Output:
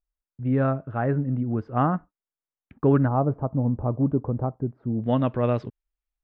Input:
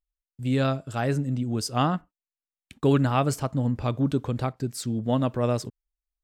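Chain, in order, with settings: low-pass 1.7 kHz 24 dB/octave, from 3.08 s 1 kHz, from 5.04 s 3 kHz; trim +1.5 dB

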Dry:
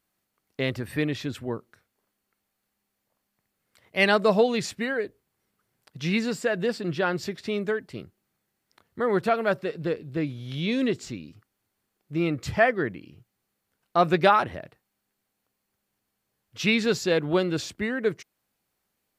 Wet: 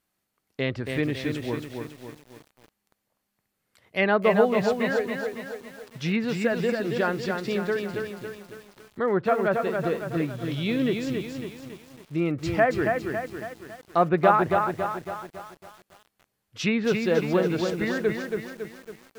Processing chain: low-pass that closes with the level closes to 1.7 kHz, closed at -19 dBFS; bit-crushed delay 277 ms, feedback 55%, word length 8-bit, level -4.5 dB

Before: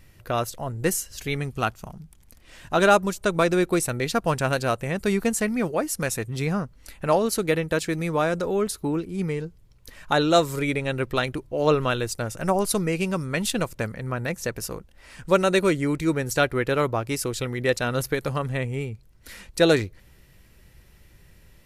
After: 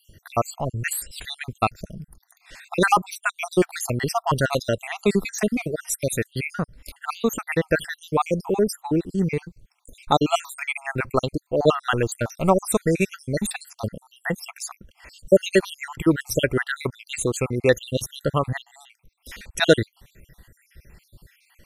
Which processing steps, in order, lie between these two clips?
random holes in the spectrogram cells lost 65%; trim +5.5 dB

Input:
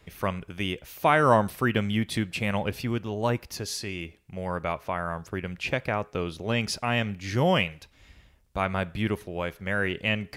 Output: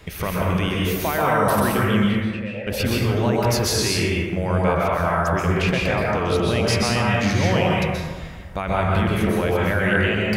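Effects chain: in parallel at -1 dB: compressor with a negative ratio -36 dBFS; on the sum: peak limiter -16.5 dBFS, peak gain reduction 9 dB; 2.07–2.67 s: vowel filter e; plate-style reverb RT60 1.5 s, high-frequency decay 0.4×, pre-delay 115 ms, DRR -4.5 dB; trim +2 dB

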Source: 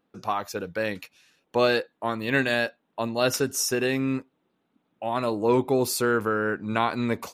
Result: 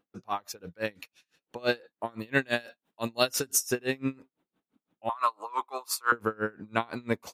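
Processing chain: 2.59–3.71 s: treble shelf 2.1 kHz -> 3.6 kHz +9.5 dB; 5.09–6.12 s: resonant high-pass 1.1 kHz, resonance Q 6.4; logarithmic tremolo 5.9 Hz, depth 29 dB

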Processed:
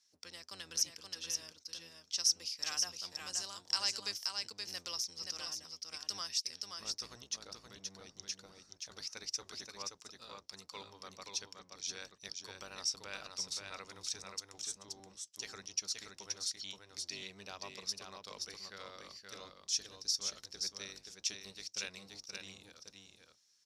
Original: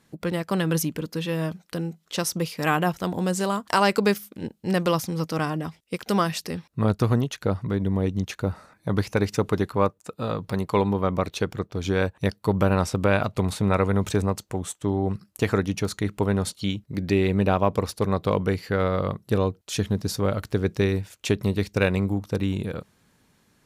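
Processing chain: octave divider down 1 oct, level +4 dB; band-pass filter 5.5 kHz, Q 5.8; delay 526 ms -4.5 dB; trim +5 dB

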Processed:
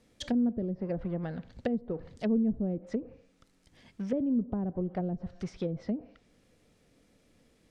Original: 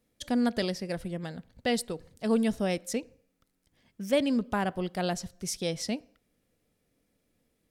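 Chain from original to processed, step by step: companding laws mixed up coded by mu; low-pass 8 kHz 12 dB/octave; low-pass that closes with the level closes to 320 Hz, closed at -25.5 dBFS

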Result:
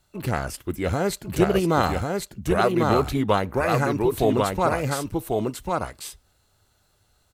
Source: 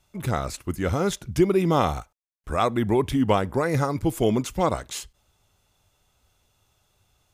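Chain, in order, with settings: delay 1095 ms -3 dB; formant shift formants +3 st

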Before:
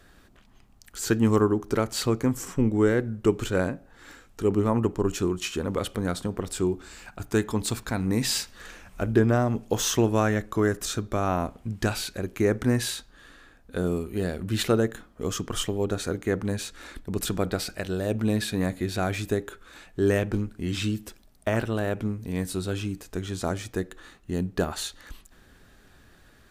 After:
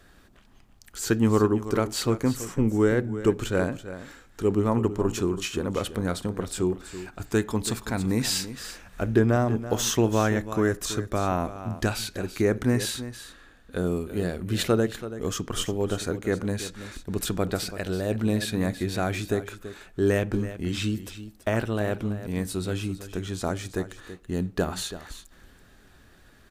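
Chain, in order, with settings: delay 331 ms -13 dB

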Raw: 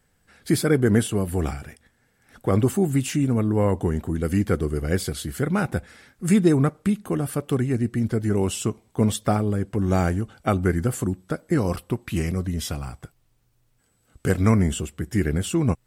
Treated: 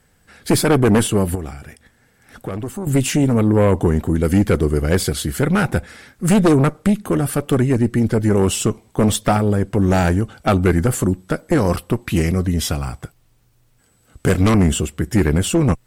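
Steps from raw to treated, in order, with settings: Chebyshev shaper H 4 -10 dB, 5 -10 dB, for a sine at -6.5 dBFS; 1.35–2.87 s: compression 2:1, threshold -34 dBFS, peak gain reduction 13 dB

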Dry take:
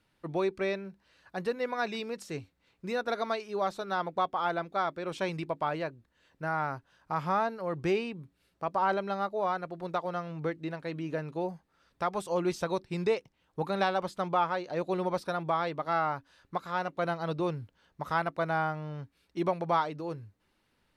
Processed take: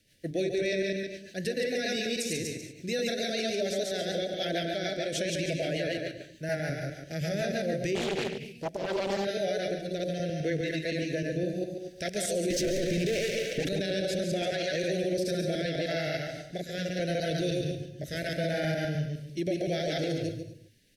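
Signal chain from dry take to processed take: chunks repeated in reverse 103 ms, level -1 dB; 12.50–13.69 s: overdrive pedal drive 36 dB, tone 1.1 kHz, clips at -15 dBFS; elliptic band-stop 640–1700 Hz, stop band 60 dB; peaking EQ 6 kHz +5 dB 0.28 oct; delay 140 ms -7.5 dB; gated-style reverb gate 270 ms rising, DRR 10.5 dB; rotary cabinet horn 6.7 Hz, later 0.75 Hz, at 7.85 s; treble shelf 3.1 kHz +11.5 dB; peak limiter -26.5 dBFS, peak gain reduction 11.5 dB; 7.95–9.25 s: loudspeaker Doppler distortion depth 0.61 ms; trim +5 dB

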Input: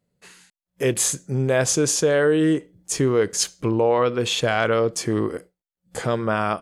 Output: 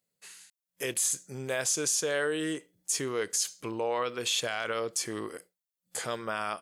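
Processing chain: tilt EQ +3.5 dB/octave; peak limiter -10 dBFS, peak gain reduction 10 dB; trim -8.5 dB

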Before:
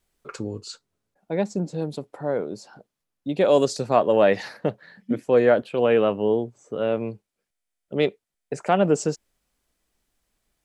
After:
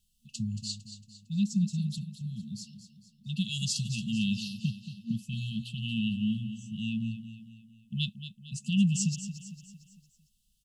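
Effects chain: FFT band-reject 230–2600 Hz; on a send: feedback delay 227 ms, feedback 48%, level -11.5 dB; on the sum: trim +1.5 dB

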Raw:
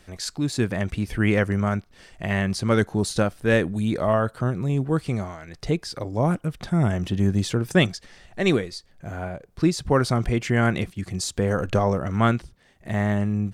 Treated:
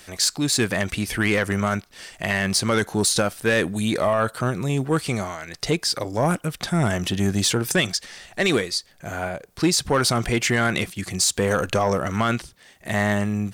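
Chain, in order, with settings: tilt EQ +2.5 dB/octave; peak limiter -14 dBFS, peak gain reduction 9.5 dB; saturation -17 dBFS, distortion -19 dB; trim +6.5 dB

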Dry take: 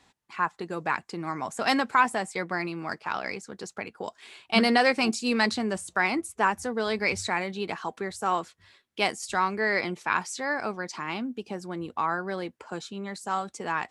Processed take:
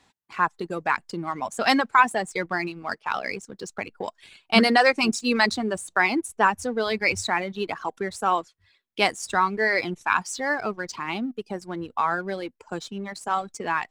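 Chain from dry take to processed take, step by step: reverb removal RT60 1.6 s; in parallel at -3.5 dB: hysteresis with a dead band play -38 dBFS

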